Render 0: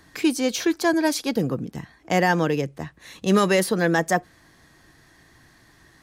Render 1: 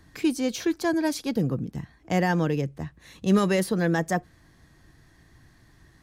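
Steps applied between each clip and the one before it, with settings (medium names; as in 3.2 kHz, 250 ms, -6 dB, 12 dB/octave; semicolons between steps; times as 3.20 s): bass shelf 200 Hz +12 dB; trim -6.5 dB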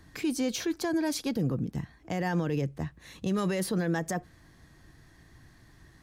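peak limiter -21 dBFS, peak gain reduction 10 dB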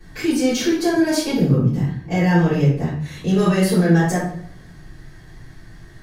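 reverberation RT60 0.60 s, pre-delay 3 ms, DRR -14 dB; trim -5.5 dB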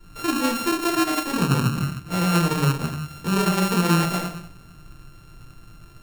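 sorted samples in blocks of 32 samples; trim -4.5 dB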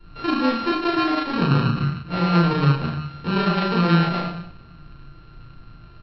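resampled via 11.025 kHz; doubling 35 ms -3 dB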